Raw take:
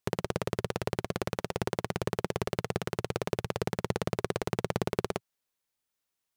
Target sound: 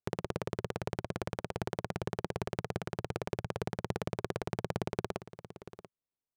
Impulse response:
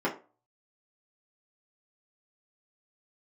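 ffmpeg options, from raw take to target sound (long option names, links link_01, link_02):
-af "adynamicsmooth=sensitivity=2.5:basefreq=850,aecho=1:1:687:0.188,volume=-4.5dB"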